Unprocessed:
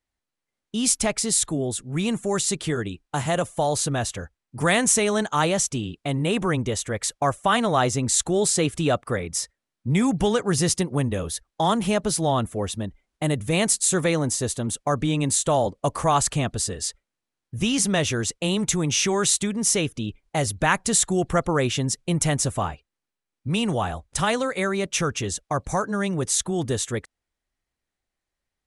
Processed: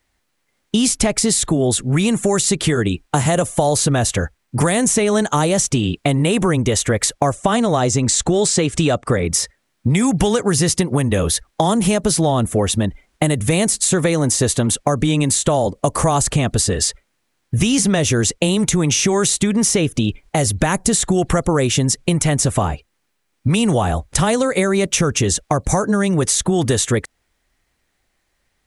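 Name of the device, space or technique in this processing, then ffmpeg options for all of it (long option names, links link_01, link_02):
mastering chain: -filter_complex "[0:a]asettb=1/sr,asplit=3[link_01][link_02][link_03];[link_01]atrim=end=7.324[link_04];[link_02]atrim=start=7.32:end=9.25,asetpts=PTS-STARTPTS,afade=type=in:duration=0.004:curve=qsin,afade=type=out:start_time=1.926:duration=0.004:curve=qsin,lowpass=frequency=8500:width=0.5412,lowpass=frequency=8500:width=1.3066[link_05];[link_03]atrim=start=9.246[link_06];[link_04][link_05]acrossfade=duration=0.004:curve1=hsin:curve2=qsin[link_07];[link_07][link_06]acrossfade=duration=0.004:curve1=qsin:curve2=hsin,equalizer=frequency=2000:width_type=o:width=0.77:gain=2.5,acrossover=split=710|5600[link_08][link_09][link_10];[link_08]acompressor=threshold=-27dB:ratio=4[link_11];[link_09]acompressor=threshold=-38dB:ratio=4[link_12];[link_10]acompressor=threshold=-33dB:ratio=4[link_13];[link_11][link_12][link_13]amix=inputs=3:normalize=0,acompressor=threshold=-30dB:ratio=2.5,alimiter=level_in=17dB:limit=-1dB:release=50:level=0:latency=1,volume=-1dB"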